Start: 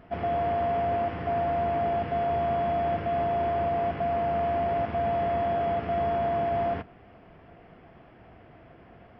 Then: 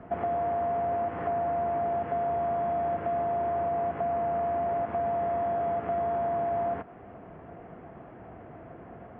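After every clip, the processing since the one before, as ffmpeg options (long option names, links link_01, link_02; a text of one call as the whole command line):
ffmpeg -i in.wav -filter_complex "[0:a]lowpass=1400,lowshelf=frequency=60:gain=-11.5,acrossover=split=210|590[link_01][link_02][link_03];[link_01]acompressor=threshold=-53dB:ratio=4[link_04];[link_02]acompressor=threshold=-46dB:ratio=4[link_05];[link_03]acompressor=threshold=-38dB:ratio=4[link_06];[link_04][link_05][link_06]amix=inputs=3:normalize=0,volume=7dB" out.wav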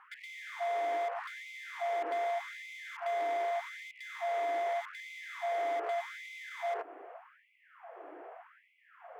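ffmpeg -i in.wav -filter_complex "[0:a]acrossover=split=110|250|1200[link_01][link_02][link_03][link_04];[link_03]asoftclip=type=hard:threshold=-33dB[link_05];[link_01][link_02][link_05][link_04]amix=inputs=4:normalize=0,afftfilt=real='re*gte(b*sr/1024,270*pow(2000/270,0.5+0.5*sin(2*PI*0.83*pts/sr)))':imag='im*gte(b*sr/1024,270*pow(2000/270,0.5+0.5*sin(2*PI*0.83*pts/sr)))':win_size=1024:overlap=0.75" out.wav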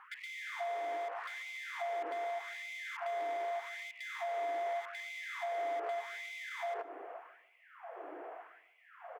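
ffmpeg -i in.wav -filter_complex "[0:a]acompressor=threshold=-40dB:ratio=3,asplit=2[link_01][link_02];[link_02]adelay=148,lowpass=frequency=2000:poles=1,volume=-16dB,asplit=2[link_03][link_04];[link_04]adelay=148,lowpass=frequency=2000:poles=1,volume=0.34,asplit=2[link_05][link_06];[link_06]adelay=148,lowpass=frequency=2000:poles=1,volume=0.34[link_07];[link_01][link_03][link_05][link_07]amix=inputs=4:normalize=0,volume=2dB" out.wav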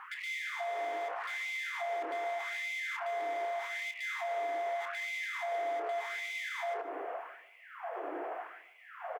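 ffmpeg -i in.wav -filter_complex "[0:a]alimiter=level_in=15dB:limit=-24dB:level=0:latency=1:release=45,volume=-15dB,asplit=2[link_01][link_02];[link_02]adelay=28,volume=-9.5dB[link_03];[link_01][link_03]amix=inputs=2:normalize=0,volume=8dB" out.wav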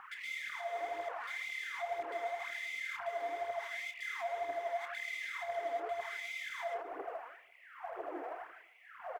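ffmpeg -i in.wav -af "aphaser=in_gain=1:out_gain=1:delay=4.5:decay=0.55:speed=2:type=triangular,volume=-5dB" out.wav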